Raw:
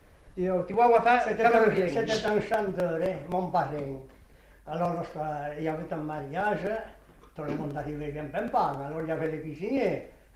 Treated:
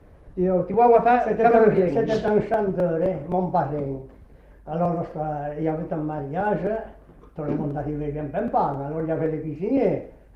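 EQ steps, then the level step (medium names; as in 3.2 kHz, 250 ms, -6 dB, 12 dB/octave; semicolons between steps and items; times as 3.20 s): tilt shelf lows +8 dB, about 1.4 kHz; 0.0 dB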